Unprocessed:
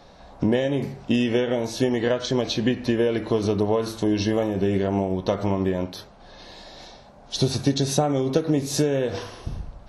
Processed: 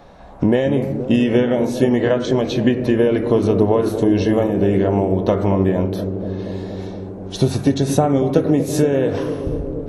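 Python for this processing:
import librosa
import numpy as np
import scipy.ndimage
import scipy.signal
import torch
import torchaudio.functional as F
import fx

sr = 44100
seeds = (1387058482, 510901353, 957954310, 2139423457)

p1 = fx.peak_eq(x, sr, hz=4800.0, db=-10.5, octaves=1.2)
p2 = p1 + fx.echo_bbd(p1, sr, ms=236, stages=1024, feedback_pct=83, wet_db=-9.5, dry=0)
y = F.gain(torch.from_numpy(p2), 5.5).numpy()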